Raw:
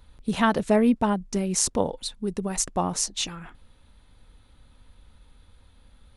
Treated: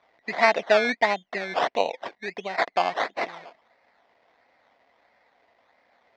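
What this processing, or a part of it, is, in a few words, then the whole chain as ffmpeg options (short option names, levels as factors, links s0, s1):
circuit-bent sampling toy: -af "acrusher=samples=18:mix=1:aa=0.000001:lfo=1:lforange=10.8:lforate=1.5,highpass=540,equalizer=f=690:t=q:w=4:g=9,equalizer=f=1300:t=q:w=4:g=-4,equalizer=f=2000:t=q:w=4:g=10,equalizer=f=2900:t=q:w=4:g=-4,lowpass=f=4600:w=0.5412,lowpass=f=4600:w=1.3066,volume=1.19"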